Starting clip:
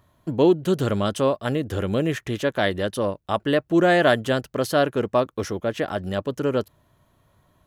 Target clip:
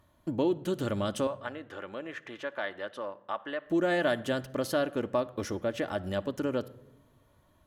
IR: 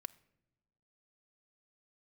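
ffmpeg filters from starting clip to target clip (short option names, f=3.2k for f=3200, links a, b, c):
-filter_complex "[0:a]acompressor=threshold=-26dB:ratio=2,asettb=1/sr,asplit=3[a][b][c];[a]atrim=end=1.274[d];[b]atrim=start=1.27:end=3.66,asetpts=PTS-STARTPTS,afade=t=in:d=0.004:c=qsin,afade=t=out:st=2.386:d=0.004:c=qsin,bandpass=f=1.3k:t=q:w=0.94:csg=0[e];[c]atrim=start=3.656[f];[d][e]acrossfade=d=0.004:c1=hsin:c2=qsin[g];[g][f]acrossfade=d=0.004:c1=qsin:c2=hsin[h];[1:a]atrim=start_sample=2205,asetrate=37044,aresample=44100[i];[h][i]afir=irnorm=-1:irlink=0"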